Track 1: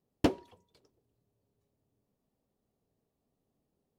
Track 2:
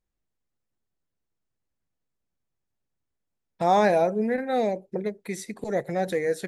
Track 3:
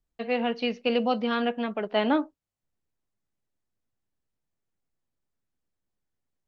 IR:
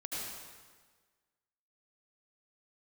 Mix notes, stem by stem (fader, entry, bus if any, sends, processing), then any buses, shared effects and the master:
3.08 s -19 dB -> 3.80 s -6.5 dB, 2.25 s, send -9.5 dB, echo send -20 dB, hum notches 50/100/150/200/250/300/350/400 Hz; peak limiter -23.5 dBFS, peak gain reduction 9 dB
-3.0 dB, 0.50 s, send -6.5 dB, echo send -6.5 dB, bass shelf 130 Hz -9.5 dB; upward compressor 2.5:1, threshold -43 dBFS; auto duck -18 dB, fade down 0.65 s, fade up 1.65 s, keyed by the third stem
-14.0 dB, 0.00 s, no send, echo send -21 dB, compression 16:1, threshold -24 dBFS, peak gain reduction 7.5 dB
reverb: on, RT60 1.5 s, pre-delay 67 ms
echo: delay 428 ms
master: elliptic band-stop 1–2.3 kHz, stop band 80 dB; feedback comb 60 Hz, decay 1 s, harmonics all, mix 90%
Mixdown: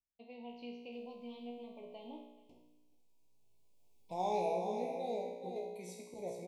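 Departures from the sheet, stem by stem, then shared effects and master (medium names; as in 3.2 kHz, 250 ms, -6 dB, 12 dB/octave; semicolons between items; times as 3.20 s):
stem 3 -14.0 dB -> -8.0 dB; reverb return -7.5 dB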